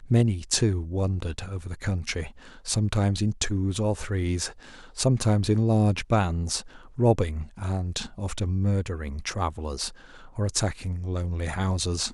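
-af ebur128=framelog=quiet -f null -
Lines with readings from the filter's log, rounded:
Integrated loudness:
  I:         -26.8 LUFS
  Threshold: -37.0 LUFS
Loudness range:
  LRA:         4.5 LU
  Threshold: -47.0 LUFS
  LRA low:   -29.5 LUFS
  LRA high:  -25.0 LUFS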